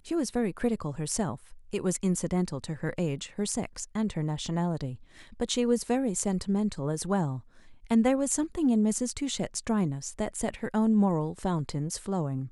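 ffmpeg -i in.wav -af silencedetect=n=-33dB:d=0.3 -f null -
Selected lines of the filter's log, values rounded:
silence_start: 1.35
silence_end: 1.73 | silence_duration: 0.38
silence_start: 4.94
silence_end: 5.40 | silence_duration: 0.46
silence_start: 7.38
silence_end: 7.91 | silence_duration: 0.53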